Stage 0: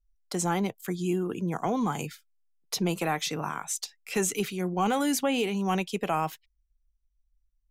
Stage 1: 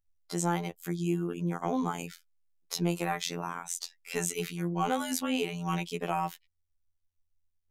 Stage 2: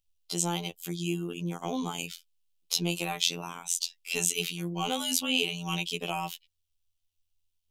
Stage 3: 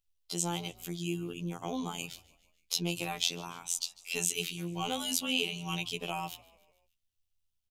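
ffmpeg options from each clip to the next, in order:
ffmpeg -i in.wav -af "afftfilt=real='hypot(re,im)*cos(PI*b)':imag='0':win_size=2048:overlap=0.75" out.wav
ffmpeg -i in.wav -af "highshelf=frequency=2300:width_type=q:width=3:gain=7.5,volume=-2dB" out.wav
ffmpeg -i in.wav -filter_complex "[0:a]asplit=5[link_01][link_02][link_03][link_04][link_05];[link_02]adelay=147,afreqshift=-58,volume=-22dB[link_06];[link_03]adelay=294,afreqshift=-116,volume=-27.4dB[link_07];[link_04]adelay=441,afreqshift=-174,volume=-32.7dB[link_08];[link_05]adelay=588,afreqshift=-232,volume=-38.1dB[link_09];[link_01][link_06][link_07][link_08][link_09]amix=inputs=5:normalize=0,volume=-3.5dB" out.wav

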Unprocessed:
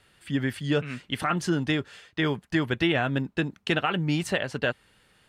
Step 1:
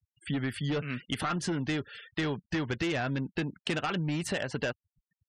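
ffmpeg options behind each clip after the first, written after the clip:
ffmpeg -i in.wav -af "volume=22.5dB,asoftclip=hard,volume=-22.5dB,afftfilt=real='re*gte(hypot(re,im),0.00501)':imag='im*gte(hypot(re,im),0.00501)':win_size=1024:overlap=0.75,acompressor=threshold=-32dB:ratio=5,volume=3dB" out.wav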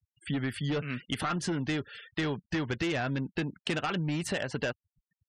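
ffmpeg -i in.wav -af anull out.wav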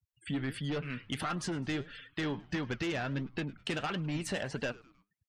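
ffmpeg -i in.wav -filter_complex "[0:a]asplit=4[link_01][link_02][link_03][link_04];[link_02]adelay=104,afreqshift=-140,volume=-22dB[link_05];[link_03]adelay=208,afreqshift=-280,volume=-28.7dB[link_06];[link_04]adelay=312,afreqshift=-420,volume=-35.5dB[link_07];[link_01][link_05][link_06][link_07]amix=inputs=4:normalize=0,flanger=delay=3.7:depth=6.9:regen=75:speed=1.5:shape=sinusoidal,asplit=2[link_08][link_09];[link_09]asoftclip=type=tanh:threshold=-40dB,volume=-11dB[link_10];[link_08][link_10]amix=inputs=2:normalize=0" out.wav

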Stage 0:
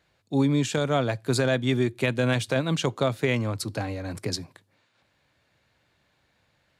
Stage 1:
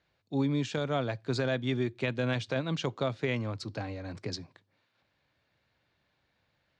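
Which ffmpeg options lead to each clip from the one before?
ffmpeg -i in.wav -af "lowpass=frequency=5900:width=0.5412,lowpass=frequency=5900:width=1.3066,volume=-6.5dB" out.wav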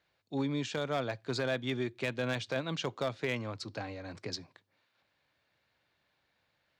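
ffmpeg -i in.wav -af "lowshelf=frequency=300:gain=-7.5,volume=25dB,asoftclip=hard,volume=-25dB" out.wav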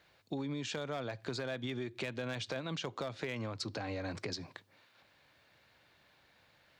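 ffmpeg -i in.wav -af "alimiter=level_in=8.5dB:limit=-24dB:level=0:latency=1:release=131,volume=-8.5dB,acompressor=threshold=-45dB:ratio=6,volume=9.5dB" out.wav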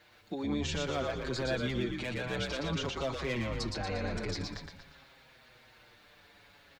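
ffmpeg -i in.wav -filter_complex "[0:a]alimiter=level_in=9.5dB:limit=-24dB:level=0:latency=1,volume=-9.5dB,asplit=2[link_01][link_02];[link_02]asplit=6[link_03][link_04][link_05][link_06][link_07][link_08];[link_03]adelay=117,afreqshift=-61,volume=-3dB[link_09];[link_04]adelay=234,afreqshift=-122,volume=-9.2dB[link_10];[link_05]adelay=351,afreqshift=-183,volume=-15.4dB[link_11];[link_06]adelay=468,afreqshift=-244,volume=-21.6dB[link_12];[link_07]adelay=585,afreqshift=-305,volume=-27.8dB[link_13];[link_08]adelay=702,afreqshift=-366,volume=-34dB[link_14];[link_09][link_10][link_11][link_12][link_13][link_14]amix=inputs=6:normalize=0[link_15];[link_01][link_15]amix=inputs=2:normalize=0,asplit=2[link_16][link_17];[link_17]adelay=6.2,afreqshift=-0.51[link_18];[link_16][link_18]amix=inputs=2:normalize=1,volume=8.5dB" out.wav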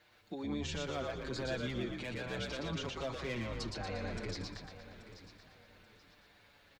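ffmpeg -i in.wav -af "aecho=1:1:832|1664|2496:0.2|0.0599|0.018,volume=-5dB" out.wav

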